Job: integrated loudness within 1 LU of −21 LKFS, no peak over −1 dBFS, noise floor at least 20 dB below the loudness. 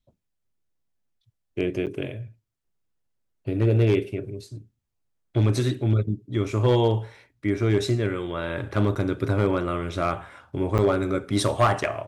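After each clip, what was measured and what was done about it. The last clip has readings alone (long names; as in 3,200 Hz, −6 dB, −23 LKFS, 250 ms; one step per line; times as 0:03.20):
share of clipped samples 0.3%; peaks flattened at −12.5 dBFS; number of dropouts 3; longest dropout 8.2 ms; integrated loudness −24.5 LKFS; sample peak −12.5 dBFS; target loudness −21.0 LKFS
→ clipped peaks rebuilt −12.5 dBFS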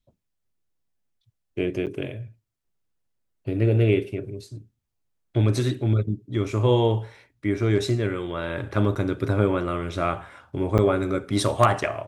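share of clipped samples 0.0%; number of dropouts 3; longest dropout 8.2 ms
→ repair the gap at 0:01.86/0:08.95/0:10.78, 8.2 ms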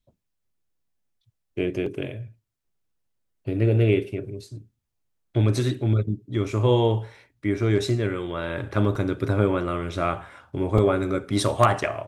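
number of dropouts 0; integrated loudness −24.5 LKFS; sample peak −3.5 dBFS; target loudness −21.0 LKFS
→ level +3.5 dB
brickwall limiter −1 dBFS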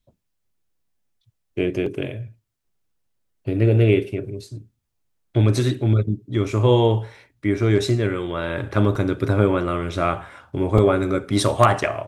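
integrated loudness −21.0 LKFS; sample peak −1.0 dBFS; background noise floor −74 dBFS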